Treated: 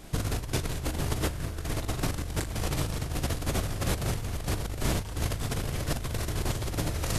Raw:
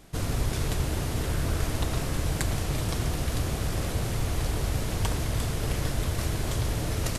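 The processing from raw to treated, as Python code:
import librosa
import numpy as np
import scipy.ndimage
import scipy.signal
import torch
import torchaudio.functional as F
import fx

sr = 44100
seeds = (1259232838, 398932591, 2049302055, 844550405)

y = fx.doubler(x, sr, ms=39.0, db=-3.5)
y = fx.over_compress(y, sr, threshold_db=-29.0, ratio=-0.5)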